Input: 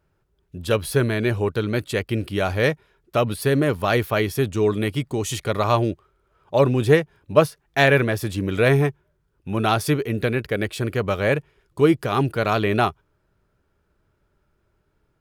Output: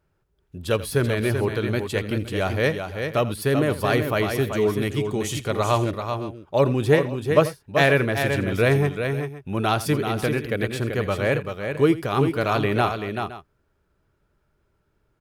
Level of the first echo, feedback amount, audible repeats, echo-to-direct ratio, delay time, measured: -16.5 dB, no regular repeats, 3, -5.5 dB, 84 ms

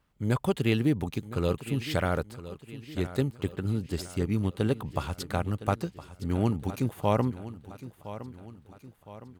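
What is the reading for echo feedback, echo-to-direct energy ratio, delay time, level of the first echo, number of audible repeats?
48%, -13.5 dB, 1013 ms, -14.5 dB, 4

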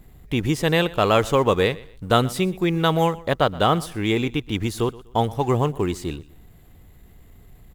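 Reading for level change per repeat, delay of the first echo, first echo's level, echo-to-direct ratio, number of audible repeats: -10.5 dB, 123 ms, -20.5 dB, -20.0 dB, 2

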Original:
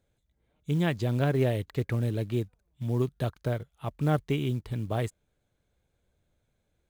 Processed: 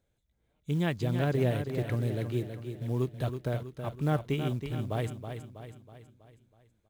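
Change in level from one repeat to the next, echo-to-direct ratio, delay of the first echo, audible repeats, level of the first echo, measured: -6.0 dB, -7.0 dB, 323 ms, 5, -8.0 dB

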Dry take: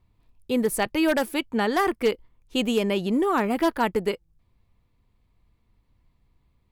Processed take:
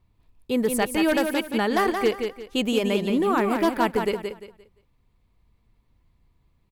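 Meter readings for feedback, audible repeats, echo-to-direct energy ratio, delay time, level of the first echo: 28%, 3, -5.5 dB, 174 ms, -6.0 dB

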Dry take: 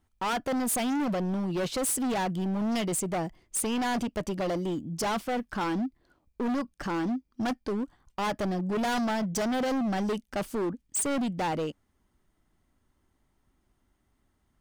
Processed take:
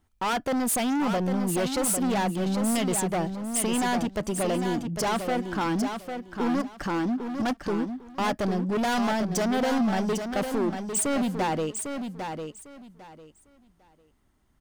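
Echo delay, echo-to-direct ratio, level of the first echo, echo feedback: 801 ms, -7.0 dB, -7.0 dB, 21%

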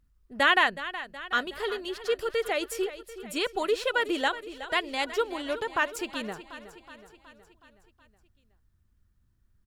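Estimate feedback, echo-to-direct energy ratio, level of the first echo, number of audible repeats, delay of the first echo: 58%, -12.0 dB, -14.0 dB, 5, 370 ms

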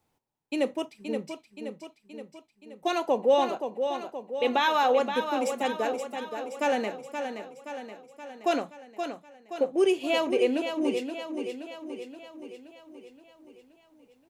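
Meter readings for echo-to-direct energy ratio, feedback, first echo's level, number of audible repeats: -6.0 dB, 57%, -7.5 dB, 6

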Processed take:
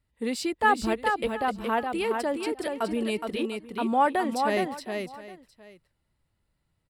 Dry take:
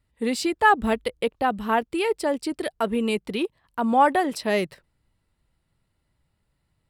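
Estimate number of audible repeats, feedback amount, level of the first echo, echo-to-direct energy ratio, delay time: 3, no regular repeats, -5.0 dB, -4.5 dB, 418 ms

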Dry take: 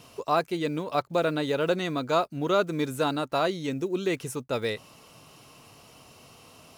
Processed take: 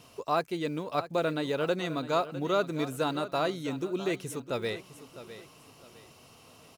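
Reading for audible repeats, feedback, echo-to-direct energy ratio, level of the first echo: 3, 34%, -13.5 dB, -14.0 dB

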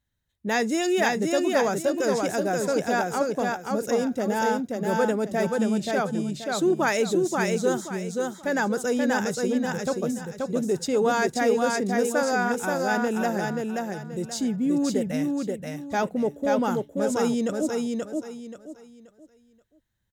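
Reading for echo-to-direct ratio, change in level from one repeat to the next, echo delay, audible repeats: -2.5 dB, -11.0 dB, 530 ms, 3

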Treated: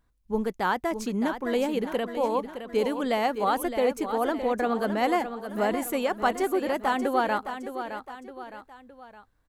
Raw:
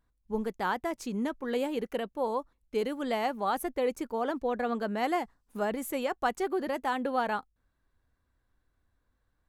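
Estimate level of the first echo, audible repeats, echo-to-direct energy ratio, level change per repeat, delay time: -9.5 dB, 3, -8.5 dB, -6.5 dB, 614 ms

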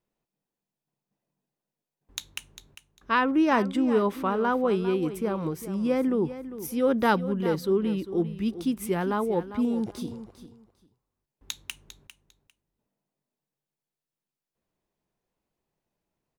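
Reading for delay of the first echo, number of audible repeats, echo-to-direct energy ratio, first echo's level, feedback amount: 400 ms, 2, -13.0 dB, -13.0 dB, 19%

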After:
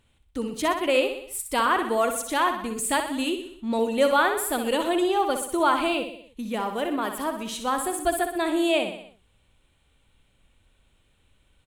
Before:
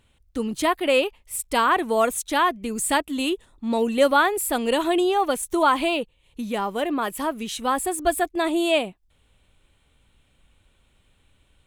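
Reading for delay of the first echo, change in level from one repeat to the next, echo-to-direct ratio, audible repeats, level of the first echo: 62 ms, -5.0 dB, -6.5 dB, 5, -8.0 dB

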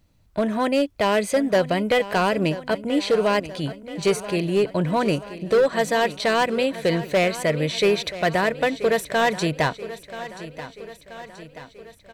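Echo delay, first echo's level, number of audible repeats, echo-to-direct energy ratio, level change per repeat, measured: 981 ms, -14.5 dB, 5, -13.0 dB, -5.0 dB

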